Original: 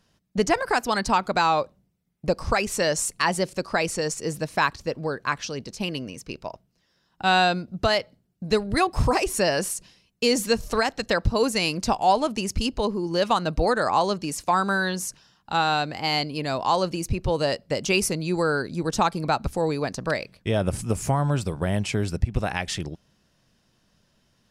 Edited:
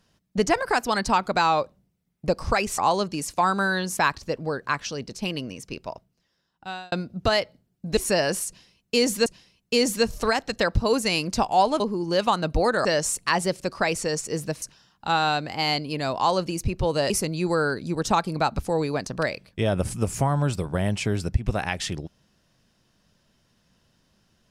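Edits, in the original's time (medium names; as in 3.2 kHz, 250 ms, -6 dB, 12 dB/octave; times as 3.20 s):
2.78–4.55 s: swap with 13.88–15.07 s
6.49–7.50 s: fade out
8.55–9.26 s: delete
9.76–10.55 s: loop, 2 plays
12.30–12.83 s: delete
17.55–17.98 s: delete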